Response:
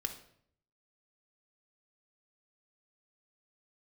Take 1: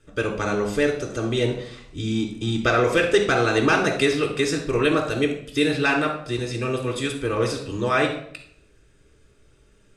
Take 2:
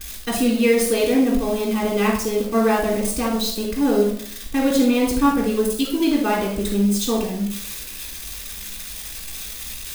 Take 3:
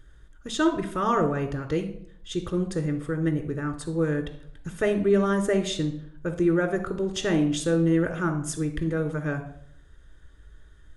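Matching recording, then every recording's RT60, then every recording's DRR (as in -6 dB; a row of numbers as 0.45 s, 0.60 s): 3; 0.65 s, 0.65 s, 0.65 s; -0.5 dB, -8.0 dB, 4.5 dB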